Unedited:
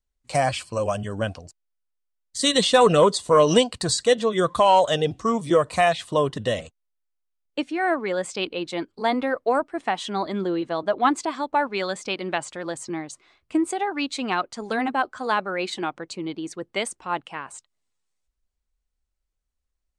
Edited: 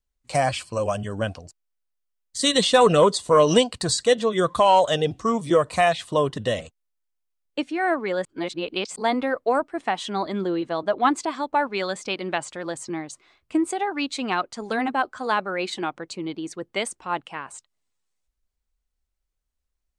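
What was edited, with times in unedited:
8.25–8.96 reverse

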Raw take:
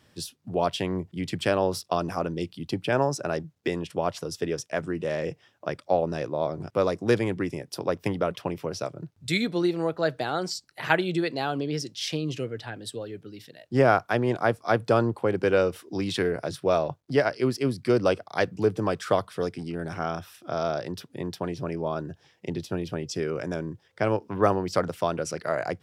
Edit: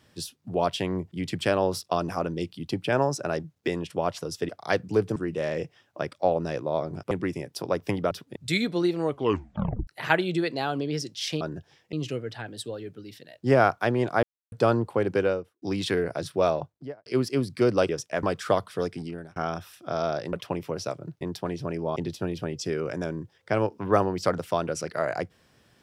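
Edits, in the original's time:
4.49–4.83 swap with 18.17–18.84
6.78–7.28 cut
8.28–9.16 swap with 20.94–21.19
9.83 tape stop 0.84 s
14.51–14.8 mute
15.38–15.9 studio fade out
16.76–17.34 studio fade out
19.63–19.97 fade out
21.94–22.46 move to 12.21

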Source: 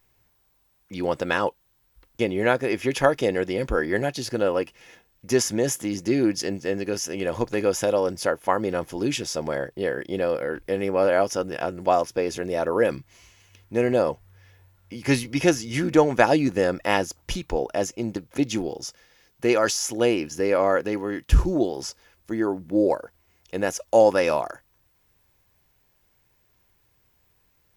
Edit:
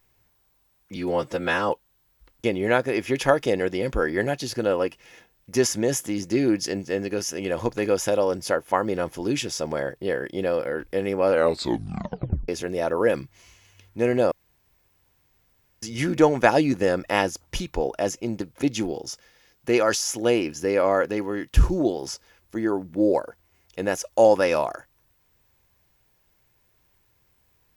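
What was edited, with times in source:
0.96–1.45 stretch 1.5×
11.04 tape stop 1.20 s
14.07–15.58 room tone

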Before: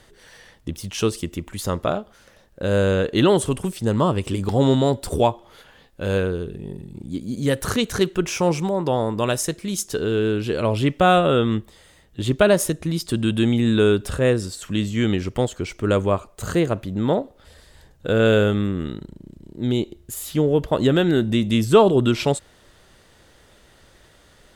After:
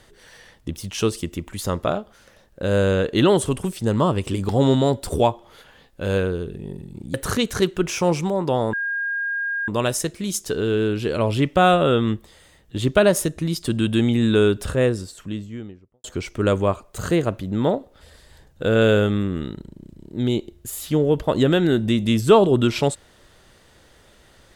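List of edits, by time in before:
7.14–7.53 cut
9.12 add tone 1620 Hz -22 dBFS 0.95 s
14.05–15.48 studio fade out

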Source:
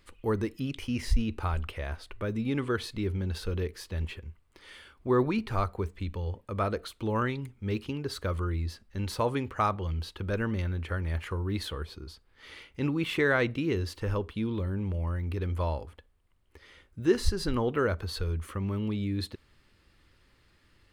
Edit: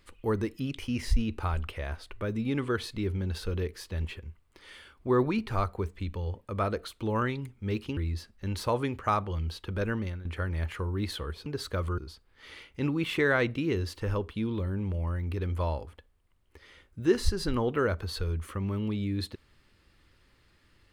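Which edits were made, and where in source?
7.97–8.49 move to 11.98
10.35–10.77 fade out equal-power, to -14 dB

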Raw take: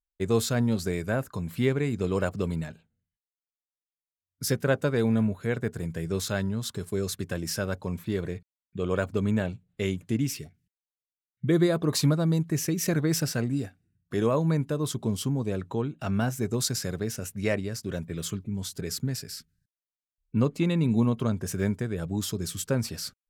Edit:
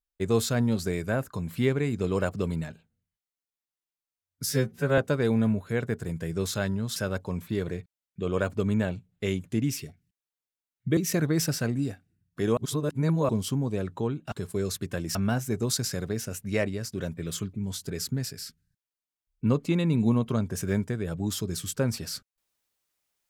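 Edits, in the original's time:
4.46–4.72 stretch 2×
6.7–7.53 move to 16.06
11.54–12.71 cut
14.31–15.03 reverse

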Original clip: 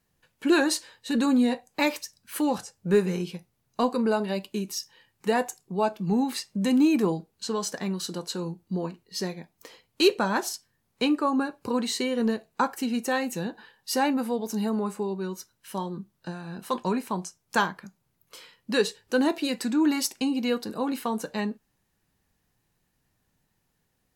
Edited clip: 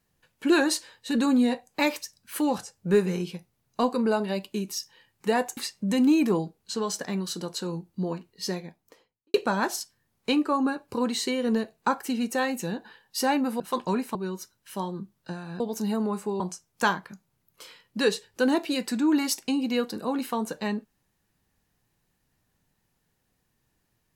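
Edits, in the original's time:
5.57–6.3 cut
9.24–10.07 studio fade out
14.33–15.13 swap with 16.58–17.13

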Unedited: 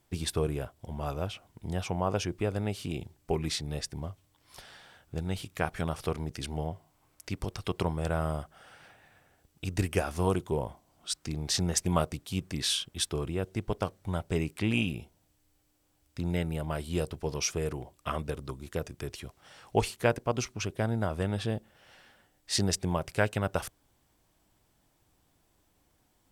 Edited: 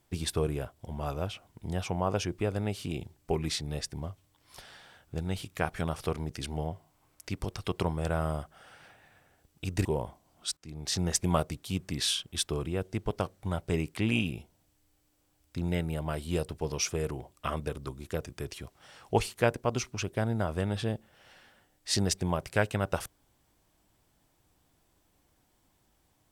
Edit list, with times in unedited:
9.85–10.47 cut
11.19–11.68 fade in, from -19 dB

